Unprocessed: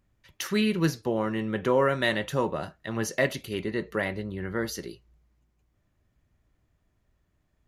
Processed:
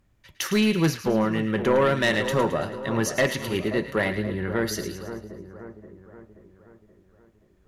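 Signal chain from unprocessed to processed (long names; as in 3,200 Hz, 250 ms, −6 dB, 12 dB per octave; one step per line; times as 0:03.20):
sine wavefolder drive 5 dB, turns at −10.5 dBFS
echo with a time of its own for lows and highs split 1,400 Hz, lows 528 ms, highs 109 ms, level −10 dB
level −4 dB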